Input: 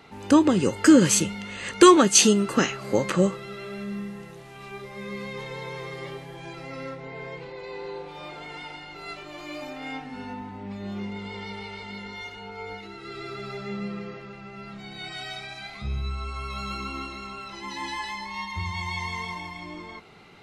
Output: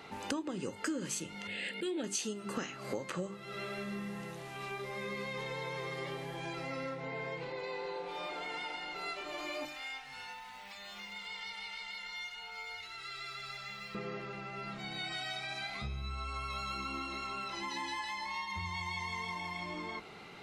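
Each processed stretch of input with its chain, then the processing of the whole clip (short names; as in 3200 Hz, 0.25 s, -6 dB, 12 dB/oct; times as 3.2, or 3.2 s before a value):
1.47–2.04 brick-wall FIR high-pass 160 Hz + auto swell 0.169 s + fixed phaser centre 2700 Hz, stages 4
9.65–13.95 short-mantissa float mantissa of 6-bit + passive tone stack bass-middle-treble 10-0-10 + three-band squash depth 70%
whole clip: low shelf 110 Hz -7 dB; notches 50/100/150/200/250/300/350/400 Hz; compressor 6:1, threshold -37 dBFS; gain +1 dB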